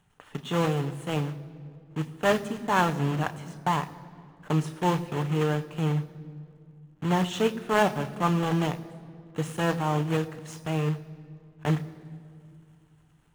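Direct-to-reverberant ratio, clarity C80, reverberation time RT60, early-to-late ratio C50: 9.0 dB, 17.0 dB, 2.3 s, 16.0 dB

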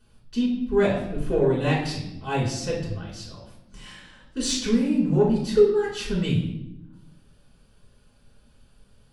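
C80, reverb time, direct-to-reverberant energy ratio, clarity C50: 8.0 dB, 0.90 s, -6.0 dB, 4.5 dB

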